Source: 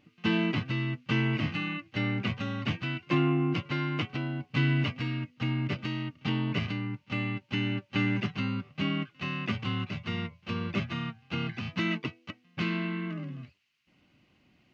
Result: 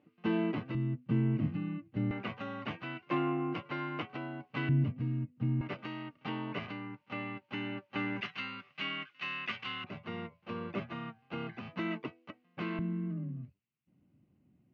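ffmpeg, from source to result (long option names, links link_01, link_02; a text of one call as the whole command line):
ffmpeg -i in.wav -af "asetnsamples=nb_out_samples=441:pad=0,asendcmd='0.75 bandpass f 190;2.11 bandpass f 770;4.69 bandpass f 160;5.61 bandpass f 810;8.21 bandpass f 2000;9.84 bandpass f 620;12.79 bandpass f 150',bandpass=frequency=500:width_type=q:width=0.79:csg=0" out.wav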